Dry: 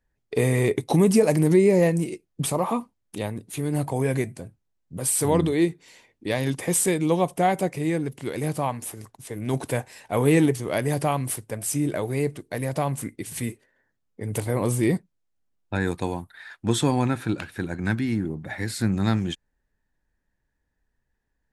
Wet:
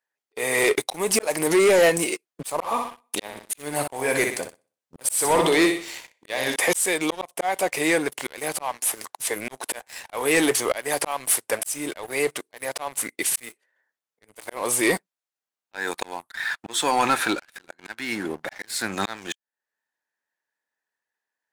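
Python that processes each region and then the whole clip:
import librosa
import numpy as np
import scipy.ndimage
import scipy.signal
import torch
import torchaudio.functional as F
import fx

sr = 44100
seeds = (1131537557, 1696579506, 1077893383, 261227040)

y = fx.chain(x, sr, fx.low_shelf(hz=140.0, db=8.5),
    fx.room_flutter(wall_m=10.6, rt60_s=0.45), at=(2.52, 6.56))
y = scipy.signal.sosfilt(scipy.signal.butter(2, 710.0, 'highpass', fs=sr, output='sos'), y)
y = fx.auto_swell(y, sr, attack_ms=441.0)
y = fx.leveller(y, sr, passes=3)
y = F.gain(torch.from_numpy(y), 4.5).numpy()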